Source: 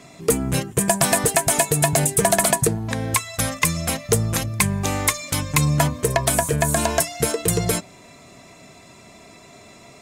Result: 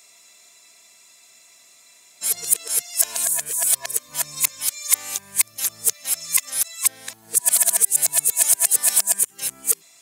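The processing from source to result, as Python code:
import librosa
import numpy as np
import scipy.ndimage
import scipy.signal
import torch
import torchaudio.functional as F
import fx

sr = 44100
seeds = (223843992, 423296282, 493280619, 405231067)

y = x[::-1].copy()
y = np.diff(y, prepend=0.0)
y = F.gain(torch.from_numpy(y), 3.0).numpy()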